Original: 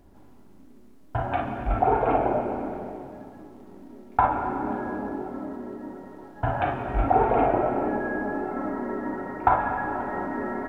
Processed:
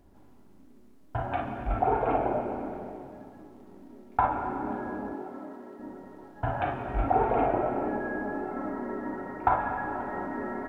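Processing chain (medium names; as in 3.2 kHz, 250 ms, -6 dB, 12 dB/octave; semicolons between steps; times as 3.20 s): 5.13–5.78 s: high-pass 200 Hz -> 560 Hz 6 dB/octave; trim -4 dB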